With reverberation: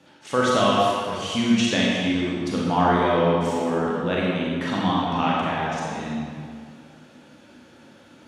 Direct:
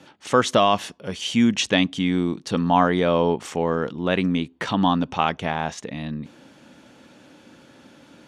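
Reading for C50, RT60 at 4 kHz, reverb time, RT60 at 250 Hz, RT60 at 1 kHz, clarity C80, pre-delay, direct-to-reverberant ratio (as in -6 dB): -2.5 dB, 1.5 s, 2.1 s, 2.0 s, 2.1 s, -0.5 dB, 30 ms, -5.5 dB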